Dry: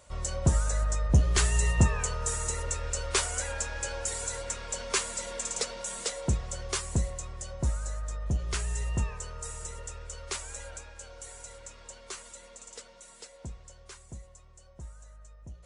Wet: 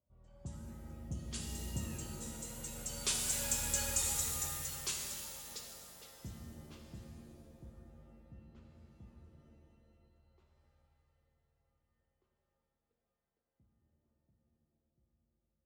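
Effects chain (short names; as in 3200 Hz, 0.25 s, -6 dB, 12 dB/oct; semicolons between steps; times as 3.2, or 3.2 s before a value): Doppler pass-by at 3.77, 9 m/s, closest 3.5 m; HPF 130 Hz 6 dB/oct; low-pass opened by the level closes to 660 Hz, open at -38 dBFS; band shelf 910 Hz -10.5 dB 2.8 oct; shimmer reverb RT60 1.7 s, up +7 st, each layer -2 dB, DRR 2 dB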